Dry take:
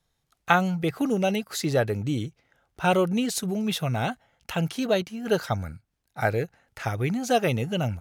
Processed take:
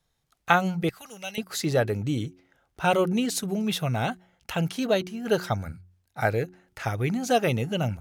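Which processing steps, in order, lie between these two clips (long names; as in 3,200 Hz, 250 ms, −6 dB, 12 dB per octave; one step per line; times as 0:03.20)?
hum removal 91.06 Hz, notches 4
0:00.89–0:01.38: guitar amp tone stack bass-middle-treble 10-0-10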